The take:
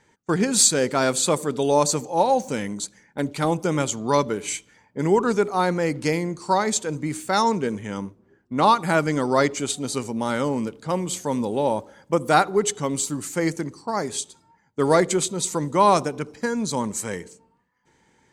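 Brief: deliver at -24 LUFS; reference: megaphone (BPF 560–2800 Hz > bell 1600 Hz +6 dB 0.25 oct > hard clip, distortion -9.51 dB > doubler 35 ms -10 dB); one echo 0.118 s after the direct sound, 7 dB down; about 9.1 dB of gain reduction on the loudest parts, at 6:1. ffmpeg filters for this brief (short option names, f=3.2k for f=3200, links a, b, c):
-filter_complex "[0:a]acompressor=threshold=-22dB:ratio=6,highpass=560,lowpass=2.8k,equalizer=f=1.6k:t=o:w=0.25:g=6,aecho=1:1:118:0.447,asoftclip=type=hard:threshold=-27dB,asplit=2[a][b];[b]adelay=35,volume=-10dB[c];[a][c]amix=inputs=2:normalize=0,volume=9.5dB"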